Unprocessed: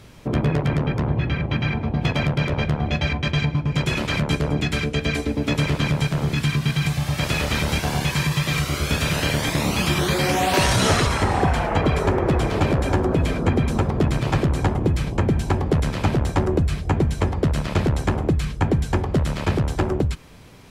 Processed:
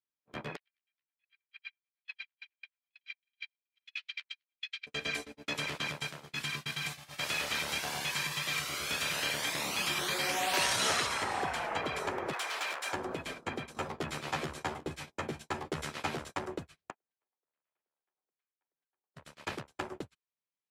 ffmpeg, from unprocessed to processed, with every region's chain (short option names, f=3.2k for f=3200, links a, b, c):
-filter_complex "[0:a]asettb=1/sr,asplit=3[a][b][c];[a]atrim=end=0.564[d];[b]atrim=start=0.56:end=4.87,asetpts=PTS-STARTPTS,afade=t=in:d=0.004:c=qsin,afade=t=out:st=4.306:d=0.004:c=qsin,asuperpass=centerf=3100:order=4:qfactor=1.2,tremolo=f=9.1:d=0.91[e];[c]atrim=start=4.866[f];[d][e]acrossfade=d=0.004:c1=hsin:c2=qsin[g];[g][f]acrossfade=d=0.004:c1=qsin:c2=hsin,asettb=1/sr,asplit=3[h][i][j];[h]atrim=end=12.334[k];[i]atrim=start=12.33:end=12.93,asetpts=PTS-STARTPTS,afade=t=in:d=0.004:c=qsin,afade=t=out:st=0.596:d=0.004:c=qsin,highpass=1k,acontrast=31,asoftclip=type=hard:threshold=-22dB[l];[j]atrim=start=12.926[m];[k][l]acrossfade=d=0.004:c1=hsin:c2=qsin[n];[n][m]acrossfade=d=0.004:c1=qsin:c2=hsin,asettb=1/sr,asplit=3[o][p][q];[o]atrim=end=13.734[r];[p]atrim=start=13.73:end=16.31,asetpts=PTS-STARTPTS,afade=t=in:d=0.004:c=qsin,afade=t=out:st=2.576:d=0.004:c=qsin,asplit=2[s][t];[t]adelay=13,volume=-3.5dB[u];[s][u]amix=inputs=2:normalize=0,atrim=end_sample=113778,aecho=1:1:361:0.158,atrim=end_sample=113778[v];[q]atrim=start=16.306[w];[r][v]acrossfade=d=0.004:c1=hsin:c2=qsin[x];[x][w]acrossfade=d=0.004:c1=qsin:c2=hsin,asettb=1/sr,asplit=3[y][z][aa];[y]atrim=end=16.904[ab];[z]atrim=start=16.9:end=19.16,asetpts=PTS-STARTPTS,afade=t=in:d=0.004:c=qsin,afade=t=out:st=2.256:d=0.004:c=qsin,agate=range=-11dB:threshold=-21dB:ratio=16:release=100:detection=peak,highpass=380,lowpass=2.5k,acompressor=threshold=-34dB:ratio=12:attack=3.2:release=140:knee=1:detection=peak[ac];[aa]atrim=start=19.156[ad];[ab][ac]acrossfade=d=0.004:c1=hsin:c2=qsin[ae];[ae][ad]acrossfade=d=0.004:c1=qsin:c2=hsin,highpass=f=1.2k:p=1,agate=range=-42dB:threshold=-32dB:ratio=16:detection=peak,volume=-6.5dB"